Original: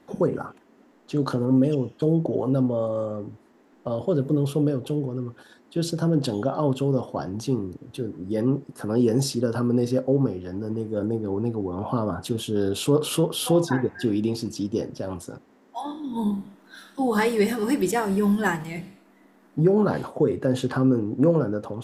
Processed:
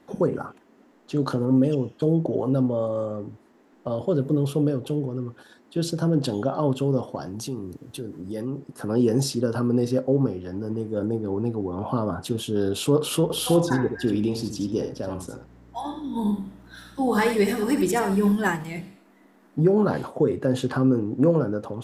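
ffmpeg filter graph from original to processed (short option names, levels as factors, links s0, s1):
-filter_complex "[0:a]asettb=1/sr,asplit=3[s0][s1][s2];[s0]atrim=end=7.154[s3];[s1]atrim=start=7.15:end=8.59,asetpts=PTS-STARTPTS,afade=t=in:d=0.004:c=qsin,afade=t=out:st=1.436:d=0.004:c=qsin,aemphasis=mode=production:type=cd,acompressor=threshold=0.0282:ratio=2:attack=3.2:release=140:knee=1:detection=peak[s4];[s2]atrim=start=8.586[s5];[s3][s4]acrossfade=d=0.004:c1=hsin:c2=qsin[s6];[s6][s5]acrossfade=d=0.004:c1=qsin:c2=hsin,asettb=1/sr,asplit=3[s7][s8][s9];[s7]atrim=end=13.224[s10];[s8]atrim=start=13.22:end=18.32,asetpts=PTS-STARTPTS,afade=t=in:d=0.004:c=qsin,afade=t=out:st=5.096:d=0.004:c=qsin,aeval=exprs='val(0)+0.00355*(sin(2*PI*60*n/s)+sin(2*PI*2*60*n/s)/2+sin(2*PI*3*60*n/s)/3+sin(2*PI*4*60*n/s)/4+sin(2*PI*5*60*n/s)/5)':c=same,aecho=1:1:77:0.422,atrim=end_sample=224910[s11];[s9]atrim=start=18.316[s12];[s10][s11]acrossfade=d=0.004:c1=hsin:c2=qsin[s13];[s13][s12]acrossfade=d=0.004:c1=qsin:c2=hsin"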